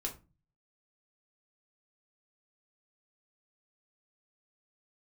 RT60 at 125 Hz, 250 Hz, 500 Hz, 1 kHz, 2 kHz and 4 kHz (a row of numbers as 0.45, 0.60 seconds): 0.70, 0.50, 0.30, 0.30, 0.25, 0.20 seconds